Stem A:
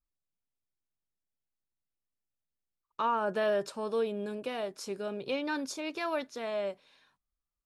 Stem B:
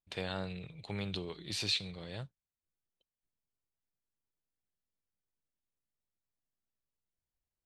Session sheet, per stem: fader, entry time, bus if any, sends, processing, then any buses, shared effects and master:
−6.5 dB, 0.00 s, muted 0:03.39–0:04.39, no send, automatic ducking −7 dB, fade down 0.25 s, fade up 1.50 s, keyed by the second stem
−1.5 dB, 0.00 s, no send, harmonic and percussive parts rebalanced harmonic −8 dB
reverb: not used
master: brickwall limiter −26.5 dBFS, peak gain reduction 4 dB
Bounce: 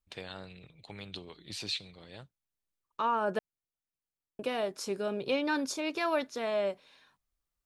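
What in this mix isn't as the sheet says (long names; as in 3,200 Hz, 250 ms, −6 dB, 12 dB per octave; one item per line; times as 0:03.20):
stem A −6.5 dB → +3.0 dB
master: missing brickwall limiter −26.5 dBFS, peak gain reduction 4 dB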